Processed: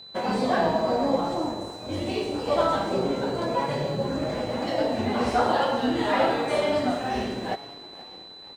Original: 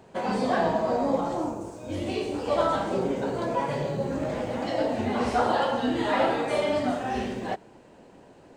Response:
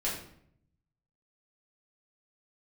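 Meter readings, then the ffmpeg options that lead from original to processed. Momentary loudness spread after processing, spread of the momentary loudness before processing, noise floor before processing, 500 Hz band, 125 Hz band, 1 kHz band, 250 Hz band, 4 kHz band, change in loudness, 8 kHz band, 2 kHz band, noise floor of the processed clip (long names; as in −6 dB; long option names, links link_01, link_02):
10 LU, 7 LU, −53 dBFS, +1.5 dB, +1.0 dB, +1.5 dB, +1.0 dB, +4.5 dB, +1.5 dB, +1.5 dB, +1.5 dB, −44 dBFS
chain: -filter_complex "[0:a]asplit=6[link_01][link_02][link_03][link_04][link_05][link_06];[link_02]adelay=478,afreqshift=53,volume=-18dB[link_07];[link_03]adelay=956,afreqshift=106,volume=-23.2dB[link_08];[link_04]adelay=1434,afreqshift=159,volume=-28.4dB[link_09];[link_05]adelay=1912,afreqshift=212,volume=-33.6dB[link_10];[link_06]adelay=2390,afreqshift=265,volume=-38.8dB[link_11];[link_01][link_07][link_08][link_09][link_10][link_11]amix=inputs=6:normalize=0,aeval=exprs='sgn(val(0))*max(abs(val(0))-0.00224,0)':channel_layout=same,aeval=exprs='val(0)+0.00631*sin(2*PI*4000*n/s)':channel_layout=same,volume=1.5dB"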